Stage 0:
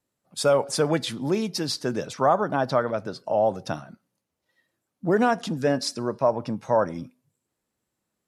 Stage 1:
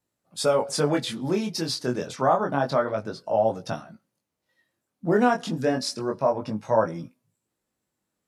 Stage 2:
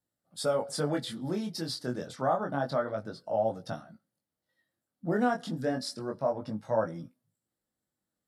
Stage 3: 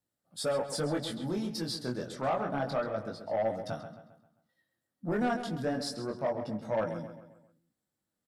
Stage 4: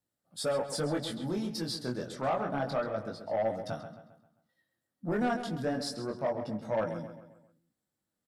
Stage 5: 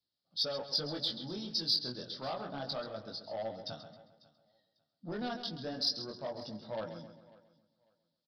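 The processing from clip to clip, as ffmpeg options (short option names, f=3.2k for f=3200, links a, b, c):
-af "flanger=delay=17.5:depth=7:speed=0.28,volume=2.5dB"
-af "equalizer=f=400:t=o:w=0.33:g=-5,equalizer=f=1k:t=o:w=0.33:g=-6,equalizer=f=2.5k:t=o:w=0.33:g=-11,equalizer=f=6.3k:t=o:w=0.33:g=-7,volume=-5.5dB"
-filter_complex "[0:a]asoftclip=type=tanh:threshold=-23.5dB,asplit=2[a][b];[b]adelay=133,lowpass=f=4.4k:p=1,volume=-10dB,asplit=2[c][d];[d]adelay=133,lowpass=f=4.4k:p=1,volume=0.46,asplit=2[e][f];[f]adelay=133,lowpass=f=4.4k:p=1,volume=0.46,asplit=2[g][h];[h]adelay=133,lowpass=f=4.4k:p=1,volume=0.46,asplit=2[i][j];[j]adelay=133,lowpass=f=4.4k:p=1,volume=0.46[k];[c][e][g][i][k]amix=inputs=5:normalize=0[l];[a][l]amix=inputs=2:normalize=0"
-af anull
-af "aresample=11025,aresample=44100,aexciter=amount=5.5:drive=8.7:freq=3.4k,aecho=1:1:546|1092:0.075|0.0157,volume=-8.5dB"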